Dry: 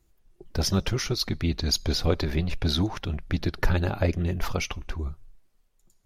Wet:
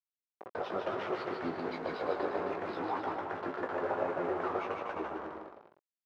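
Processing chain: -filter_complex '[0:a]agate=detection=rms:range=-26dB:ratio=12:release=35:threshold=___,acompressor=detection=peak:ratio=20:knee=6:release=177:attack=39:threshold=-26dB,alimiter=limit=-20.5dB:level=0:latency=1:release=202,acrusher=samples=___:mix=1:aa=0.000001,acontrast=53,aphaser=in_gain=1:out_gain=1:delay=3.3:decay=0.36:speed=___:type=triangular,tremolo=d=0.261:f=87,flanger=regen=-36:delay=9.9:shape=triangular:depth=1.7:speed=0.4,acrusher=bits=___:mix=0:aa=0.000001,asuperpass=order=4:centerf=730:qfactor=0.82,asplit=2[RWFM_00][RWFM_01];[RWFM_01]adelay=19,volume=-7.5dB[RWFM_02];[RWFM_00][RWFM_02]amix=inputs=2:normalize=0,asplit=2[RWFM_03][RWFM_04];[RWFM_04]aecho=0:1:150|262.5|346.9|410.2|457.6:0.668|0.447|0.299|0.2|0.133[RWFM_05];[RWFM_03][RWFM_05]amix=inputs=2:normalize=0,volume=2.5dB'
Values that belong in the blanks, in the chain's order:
-52dB, 5, 2, 5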